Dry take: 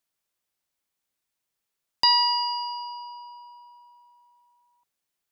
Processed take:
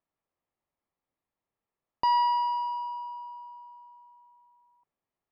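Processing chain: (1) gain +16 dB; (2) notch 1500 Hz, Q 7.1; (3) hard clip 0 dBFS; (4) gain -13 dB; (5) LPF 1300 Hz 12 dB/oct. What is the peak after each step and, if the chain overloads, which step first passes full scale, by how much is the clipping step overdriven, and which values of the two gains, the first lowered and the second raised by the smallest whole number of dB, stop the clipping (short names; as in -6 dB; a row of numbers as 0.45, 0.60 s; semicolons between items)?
+6.0, +6.0, 0.0, -13.0, -18.0 dBFS; step 1, 6.0 dB; step 1 +10 dB, step 4 -7 dB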